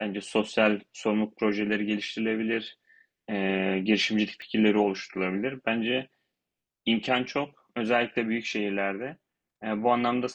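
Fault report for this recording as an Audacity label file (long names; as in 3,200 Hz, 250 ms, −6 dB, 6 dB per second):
4.420000	4.420000	click −31 dBFS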